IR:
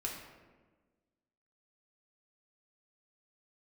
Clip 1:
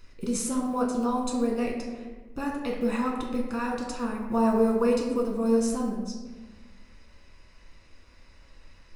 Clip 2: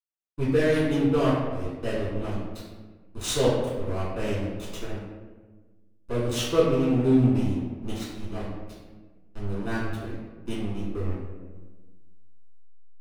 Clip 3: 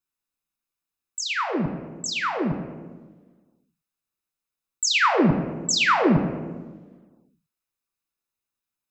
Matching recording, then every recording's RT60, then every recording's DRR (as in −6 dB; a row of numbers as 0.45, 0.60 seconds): 1; 1.4, 1.4, 1.4 seconds; −1.5, −10.5, 3.5 decibels